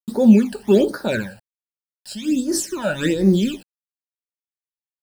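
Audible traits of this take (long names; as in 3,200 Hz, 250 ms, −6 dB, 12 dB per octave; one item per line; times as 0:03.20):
a quantiser's noise floor 8 bits, dither none
phaser sweep stages 12, 1.3 Hz, lowest notch 350–2,800 Hz
amplitude modulation by smooth noise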